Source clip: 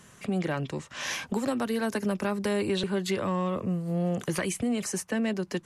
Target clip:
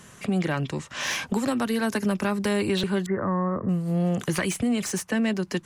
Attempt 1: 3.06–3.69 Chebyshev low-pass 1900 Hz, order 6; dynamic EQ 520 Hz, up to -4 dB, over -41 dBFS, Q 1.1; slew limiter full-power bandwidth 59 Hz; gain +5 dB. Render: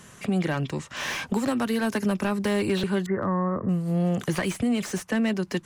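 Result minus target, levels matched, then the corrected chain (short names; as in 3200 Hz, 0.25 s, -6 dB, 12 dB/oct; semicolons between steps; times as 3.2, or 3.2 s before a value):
slew limiter: distortion +7 dB
3.06–3.69 Chebyshev low-pass 1900 Hz, order 6; dynamic EQ 520 Hz, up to -4 dB, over -41 dBFS, Q 1.1; slew limiter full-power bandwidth 143.5 Hz; gain +5 dB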